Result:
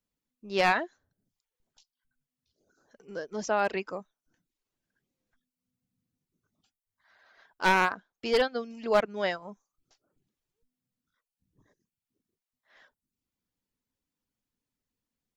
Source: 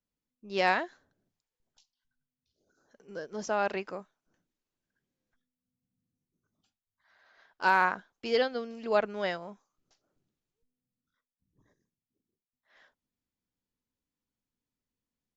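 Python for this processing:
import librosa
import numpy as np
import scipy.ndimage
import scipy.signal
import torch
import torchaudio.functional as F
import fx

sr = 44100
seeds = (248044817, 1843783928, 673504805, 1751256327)

y = np.minimum(x, 2.0 * 10.0 ** (-22.5 / 20.0) - x)
y = fx.dereverb_blind(y, sr, rt60_s=0.51)
y = F.gain(torch.from_numpy(y), 3.0).numpy()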